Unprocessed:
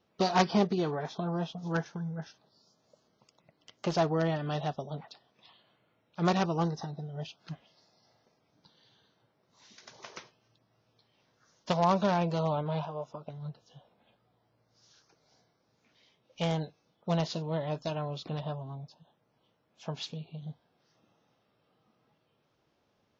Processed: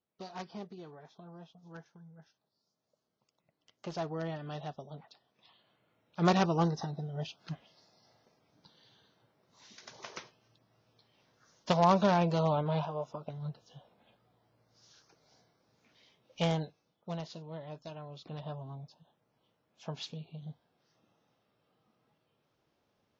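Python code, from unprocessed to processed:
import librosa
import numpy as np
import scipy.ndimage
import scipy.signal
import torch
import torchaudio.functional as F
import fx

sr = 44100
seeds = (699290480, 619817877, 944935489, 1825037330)

y = fx.gain(x, sr, db=fx.line((2.09, -18.0), (4.31, -8.0), (5.05, -8.0), (6.29, 1.0), (16.43, 1.0), (17.23, -11.0), (18.06, -11.0), (18.63, -3.0)))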